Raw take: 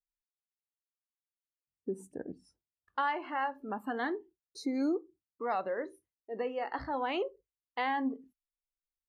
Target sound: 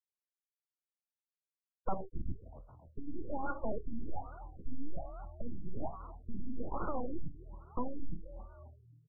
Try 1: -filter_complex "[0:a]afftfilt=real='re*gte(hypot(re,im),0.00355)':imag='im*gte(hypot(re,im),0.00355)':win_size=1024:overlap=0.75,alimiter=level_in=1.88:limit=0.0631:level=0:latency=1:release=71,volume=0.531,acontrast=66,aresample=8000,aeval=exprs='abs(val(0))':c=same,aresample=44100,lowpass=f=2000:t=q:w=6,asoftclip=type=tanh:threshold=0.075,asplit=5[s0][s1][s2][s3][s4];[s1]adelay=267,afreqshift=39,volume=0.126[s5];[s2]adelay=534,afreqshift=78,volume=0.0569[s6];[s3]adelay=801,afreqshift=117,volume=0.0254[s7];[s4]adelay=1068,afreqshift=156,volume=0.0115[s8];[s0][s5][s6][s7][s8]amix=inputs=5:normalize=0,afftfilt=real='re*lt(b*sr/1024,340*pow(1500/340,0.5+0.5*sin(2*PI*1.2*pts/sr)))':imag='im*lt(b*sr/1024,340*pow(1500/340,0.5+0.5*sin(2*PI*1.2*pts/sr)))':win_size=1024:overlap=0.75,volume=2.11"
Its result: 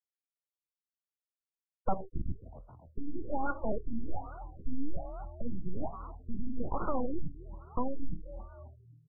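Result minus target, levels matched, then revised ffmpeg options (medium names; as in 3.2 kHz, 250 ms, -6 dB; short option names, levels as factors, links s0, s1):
saturation: distortion -8 dB
-filter_complex "[0:a]afftfilt=real='re*gte(hypot(re,im),0.00355)':imag='im*gte(hypot(re,im),0.00355)':win_size=1024:overlap=0.75,alimiter=level_in=1.88:limit=0.0631:level=0:latency=1:release=71,volume=0.531,acontrast=66,aresample=8000,aeval=exprs='abs(val(0))':c=same,aresample=44100,lowpass=f=2000:t=q:w=6,asoftclip=type=tanh:threshold=0.0299,asplit=5[s0][s1][s2][s3][s4];[s1]adelay=267,afreqshift=39,volume=0.126[s5];[s2]adelay=534,afreqshift=78,volume=0.0569[s6];[s3]adelay=801,afreqshift=117,volume=0.0254[s7];[s4]adelay=1068,afreqshift=156,volume=0.0115[s8];[s0][s5][s6][s7][s8]amix=inputs=5:normalize=0,afftfilt=real='re*lt(b*sr/1024,340*pow(1500/340,0.5+0.5*sin(2*PI*1.2*pts/sr)))':imag='im*lt(b*sr/1024,340*pow(1500/340,0.5+0.5*sin(2*PI*1.2*pts/sr)))':win_size=1024:overlap=0.75,volume=2.11"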